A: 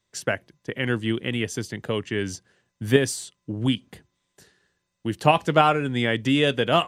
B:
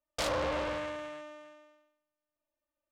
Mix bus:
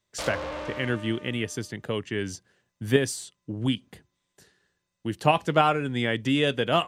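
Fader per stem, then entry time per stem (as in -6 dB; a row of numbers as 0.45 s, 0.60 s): -3.0 dB, -1.5 dB; 0.00 s, 0.00 s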